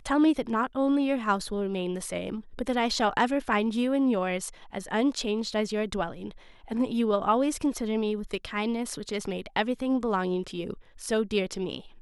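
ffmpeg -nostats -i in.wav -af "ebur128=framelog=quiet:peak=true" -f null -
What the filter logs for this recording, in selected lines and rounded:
Integrated loudness:
  I:         -28.2 LUFS
  Threshold: -38.4 LUFS
Loudness range:
  LRA:         2.7 LU
  Threshold: -48.5 LUFS
  LRA low:   -30.0 LUFS
  LRA high:  -27.3 LUFS
True peak:
  Peak:      -11.6 dBFS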